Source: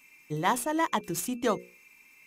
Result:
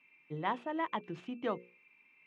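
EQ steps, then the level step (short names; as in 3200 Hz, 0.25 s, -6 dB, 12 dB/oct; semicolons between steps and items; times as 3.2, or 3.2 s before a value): Chebyshev band-pass 120–3000 Hz, order 3; -7.5 dB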